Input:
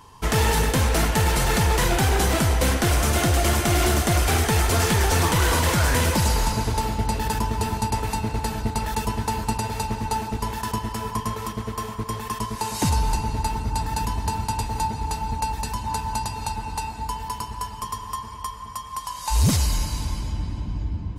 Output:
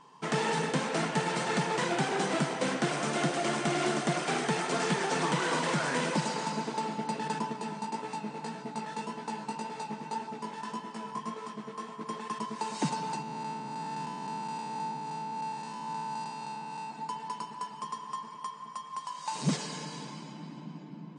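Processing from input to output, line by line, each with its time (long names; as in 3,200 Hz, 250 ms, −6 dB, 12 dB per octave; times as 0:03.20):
0:07.53–0:12.01: chorus effect 1.8 Hz, delay 16 ms, depth 4.2 ms
0:13.22–0:16.90: spectrum smeared in time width 163 ms
0:19.52–0:20.10: hollow resonant body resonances 450/1,700/3,300 Hz, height 9 dB
whole clip: brick-wall band-pass 130–9,600 Hz; high-shelf EQ 5,000 Hz −8.5 dB; level −6 dB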